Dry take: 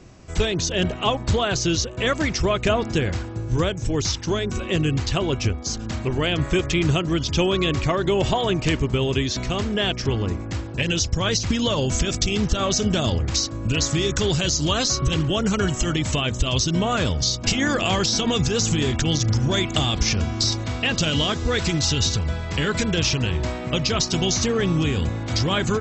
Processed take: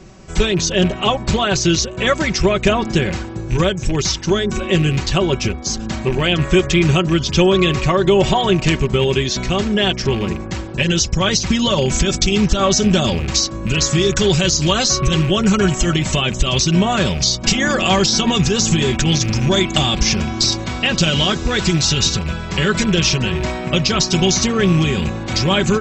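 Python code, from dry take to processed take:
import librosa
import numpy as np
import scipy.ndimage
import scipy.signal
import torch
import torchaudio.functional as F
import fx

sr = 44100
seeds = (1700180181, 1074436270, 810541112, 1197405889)

y = fx.rattle_buzz(x, sr, strikes_db=-21.0, level_db=-25.0)
y = y + 0.59 * np.pad(y, (int(5.3 * sr / 1000.0), 0))[:len(y)]
y = F.gain(torch.from_numpy(y), 4.5).numpy()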